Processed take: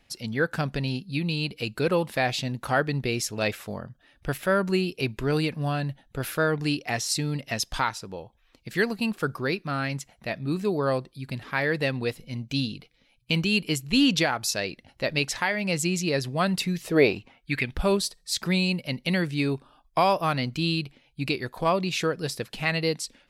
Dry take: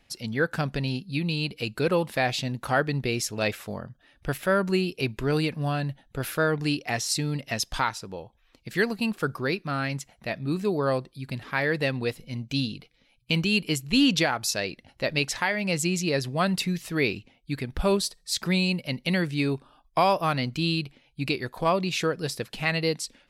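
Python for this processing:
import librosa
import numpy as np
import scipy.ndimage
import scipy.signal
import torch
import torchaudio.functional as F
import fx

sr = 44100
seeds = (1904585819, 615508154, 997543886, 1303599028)

y = fx.peak_eq(x, sr, hz=fx.line((16.84, 400.0), (17.73, 3100.0)), db=14.5, octaves=1.2, at=(16.84, 17.73), fade=0.02)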